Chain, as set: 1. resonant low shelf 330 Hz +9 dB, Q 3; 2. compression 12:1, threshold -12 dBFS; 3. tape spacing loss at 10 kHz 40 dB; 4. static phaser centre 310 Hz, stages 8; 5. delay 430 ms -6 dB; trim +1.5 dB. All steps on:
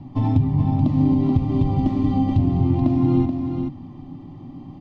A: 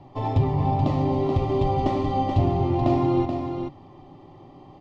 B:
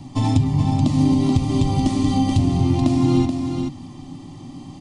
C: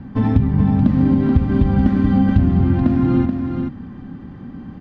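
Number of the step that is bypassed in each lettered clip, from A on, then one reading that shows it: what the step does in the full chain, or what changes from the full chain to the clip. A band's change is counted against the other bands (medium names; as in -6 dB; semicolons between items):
1, 250 Hz band -12.0 dB; 3, 1 kHz band +2.5 dB; 4, 1 kHz band -2.0 dB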